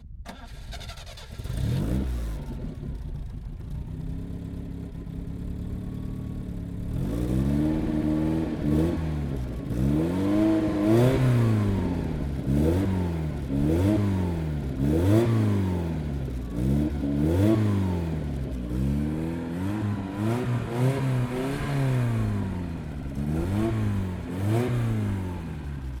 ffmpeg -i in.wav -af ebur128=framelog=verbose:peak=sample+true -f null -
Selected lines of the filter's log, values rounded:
Integrated loudness:
  I:         -27.0 LUFS
  Threshold: -37.3 LUFS
Loudness range:
  LRA:        10.2 LU
  Threshold: -47.0 LUFS
  LRA low:   -34.4 LUFS
  LRA high:  -24.2 LUFS
Sample peak:
  Peak:       -8.7 dBFS
True peak:
  Peak:       -8.7 dBFS